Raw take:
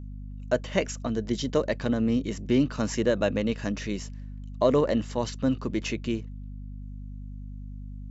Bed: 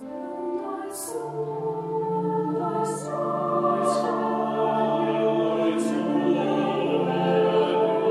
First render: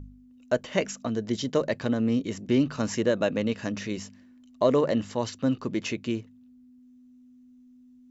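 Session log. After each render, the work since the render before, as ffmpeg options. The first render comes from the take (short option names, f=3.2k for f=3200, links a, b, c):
-af "bandreject=f=50:t=h:w=4,bandreject=f=100:t=h:w=4,bandreject=f=150:t=h:w=4,bandreject=f=200:t=h:w=4"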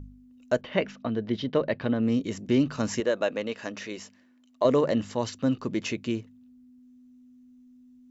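-filter_complex "[0:a]asettb=1/sr,asplit=3[a][b][c];[a]atrim=end=0.614[d];[b]atrim=start=0.61:end=2.03,asetpts=PTS-STARTPTS,afade=t=in:d=0.004:c=qsin,afade=t=out:st=1.416:d=0.004:c=qsin,lowpass=f=3.8k:w=0.5412,lowpass=f=3.8k:w=1.3066[e];[c]atrim=start=2.026[f];[d][e]acrossfade=d=0.004:c1=hsin:c2=qsin[g];[g][f]acrossfade=d=0.004:c1=qsin:c2=hsin,asettb=1/sr,asplit=3[h][i][j];[h]atrim=end=3.004[k];[i]atrim=start=3:end=4.65,asetpts=PTS-STARTPTS,afade=t=in:d=0.004:c=qsin,afade=t=out:st=1.646:d=0.004:c=qsin,bass=f=250:g=-15,treble=f=4k:g=-3[l];[j]atrim=start=4.646[m];[k][l]acrossfade=d=0.004:c1=hsin:c2=qsin[n];[n][m]acrossfade=d=0.004:c1=qsin:c2=hsin"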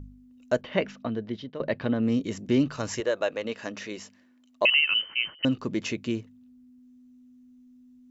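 -filter_complex "[0:a]asettb=1/sr,asplit=3[a][b][c];[a]atrim=end=2.684[d];[b]atrim=start=2.68:end=3.45,asetpts=PTS-STARTPTS,afade=t=in:d=0.004:c=qsin,afade=t=out:st=0.766:d=0.004:c=qsin,equalizer=f=220:t=o:w=0.77:g=-9.5[e];[c]atrim=start=3.446[f];[d][e]acrossfade=d=0.004:c1=hsin:c2=qsin[g];[g][f]acrossfade=d=0.004:c1=qsin:c2=hsin,asettb=1/sr,asplit=3[h][i][j];[h]atrim=end=4.654[k];[i]atrim=start=4.65:end=5.45,asetpts=PTS-STARTPTS,afade=t=in:d=0.004:c=qsin,afade=t=out:st=0.796:d=0.004:c=qsin,lowpass=f=2.7k:t=q:w=0.5098,lowpass=f=2.7k:t=q:w=0.6013,lowpass=f=2.7k:t=q:w=0.9,lowpass=f=2.7k:t=q:w=2.563,afreqshift=-3200[l];[j]atrim=start=5.446[m];[k][l]acrossfade=d=0.004:c1=hsin:c2=qsin[n];[n][m]acrossfade=d=0.004:c1=qsin:c2=hsin,asplit=2[o][p];[o]atrim=end=1.6,asetpts=PTS-STARTPTS,afade=t=out:st=1.01:d=0.59:silence=0.16788[q];[p]atrim=start=1.6,asetpts=PTS-STARTPTS,afade=t=in:d=0.004:c=hsin:silence=0.16788[r];[q][r]concat=n=2:v=0:a=1"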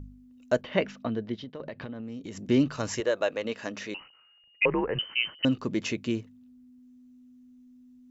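-filter_complex "[0:a]asplit=3[a][b][c];[a]afade=t=out:st=1.34:d=0.02[d];[b]acompressor=threshold=-34dB:ratio=12:attack=3.2:release=140:knee=1:detection=peak,afade=t=in:st=1.34:d=0.02,afade=t=out:st=2.43:d=0.02[e];[c]afade=t=in:st=2.43:d=0.02[f];[d][e][f]amix=inputs=3:normalize=0,asettb=1/sr,asplit=3[g][h][i];[g]atrim=end=3.944[j];[h]atrim=start=3.94:end=4.99,asetpts=PTS-STARTPTS,afade=t=in:d=0.004:c=qsin,afade=t=out:st=1.046:d=0.004:c=qsin,lowpass=f=2.6k:t=q:w=0.5098,lowpass=f=2.6k:t=q:w=0.6013,lowpass=f=2.6k:t=q:w=0.9,lowpass=f=2.6k:t=q:w=2.563,afreqshift=-3100[k];[i]atrim=start=4.986[l];[j][k]acrossfade=d=0.004:c1=hsin:c2=qsin[m];[m][l]acrossfade=d=0.004:c1=qsin:c2=hsin"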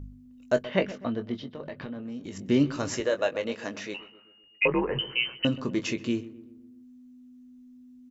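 -filter_complex "[0:a]asplit=2[a][b];[b]adelay=21,volume=-8.5dB[c];[a][c]amix=inputs=2:normalize=0,asplit=2[d][e];[e]adelay=128,lowpass=f=1.5k:p=1,volume=-15.5dB,asplit=2[f][g];[g]adelay=128,lowpass=f=1.5k:p=1,volume=0.55,asplit=2[h][i];[i]adelay=128,lowpass=f=1.5k:p=1,volume=0.55,asplit=2[j][k];[k]adelay=128,lowpass=f=1.5k:p=1,volume=0.55,asplit=2[l][m];[m]adelay=128,lowpass=f=1.5k:p=1,volume=0.55[n];[d][f][h][j][l][n]amix=inputs=6:normalize=0"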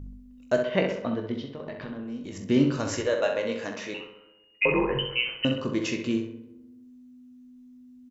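-filter_complex "[0:a]asplit=2[a][b];[b]adelay=44,volume=-12dB[c];[a][c]amix=inputs=2:normalize=0,asplit=2[d][e];[e]adelay=65,lowpass=f=3.2k:p=1,volume=-7dB,asplit=2[f][g];[g]adelay=65,lowpass=f=3.2k:p=1,volume=0.54,asplit=2[h][i];[i]adelay=65,lowpass=f=3.2k:p=1,volume=0.54,asplit=2[j][k];[k]adelay=65,lowpass=f=3.2k:p=1,volume=0.54,asplit=2[l][m];[m]adelay=65,lowpass=f=3.2k:p=1,volume=0.54,asplit=2[n][o];[o]adelay=65,lowpass=f=3.2k:p=1,volume=0.54,asplit=2[p][q];[q]adelay=65,lowpass=f=3.2k:p=1,volume=0.54[r];[d][f][h][j][l][n][p][r]amix=inputs=8:normalize=0"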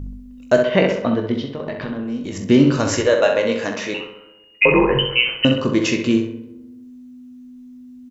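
-af "volume=10dB,alimiter=limit=-3dB:level=0:latency=1"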